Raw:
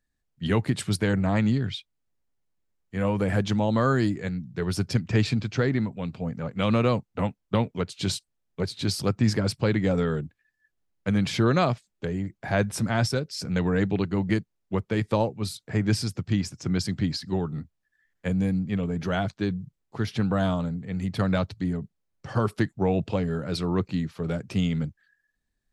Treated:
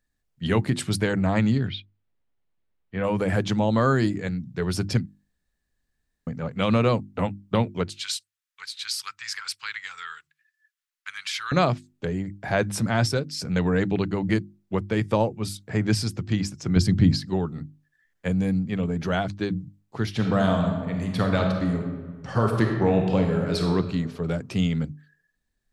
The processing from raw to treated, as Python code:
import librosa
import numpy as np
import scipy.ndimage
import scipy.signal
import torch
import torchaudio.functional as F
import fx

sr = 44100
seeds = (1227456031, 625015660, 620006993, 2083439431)

y = fx.lowpass(x, sr, hz=3900.0, slope=24, at=(1.68, 3.04))
y = fx.cheby2_highpass(y, sr, hz=630.0, order=4, stop_db=40, at=(7.9, 11.52))
y = fx.notch(y, sr, hz=4100.0, q=8.1, at=(14.95, 15.6))
y = fx.low_shelf(y, sr, hz=260.0, db=11.5, at=(16.76, 17.18))
y = fx.reverb_throw(y, sr, start_s=20.1, length_s=3.57, rt60_s=1.5, drr_db=2.0)
y = fx.edit(y, sr, fx.room_tone_fill(start_s=5.06, length_s=1.21), tone=tone)
y = fx.hum_notches(y, sr, base_hz=50, count=7)
y = y * librosa.db_to_amplitude(2.0)